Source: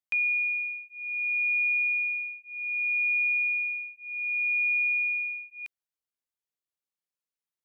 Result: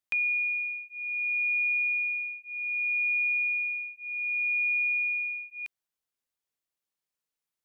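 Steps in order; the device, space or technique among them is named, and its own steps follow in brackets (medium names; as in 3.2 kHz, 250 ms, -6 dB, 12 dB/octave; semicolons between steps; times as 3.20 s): parallel compression (in parallel at 0 dB: compression, threshold -39 dBFS, peak gain reduction 13 dB); on the sum: trim -3 dB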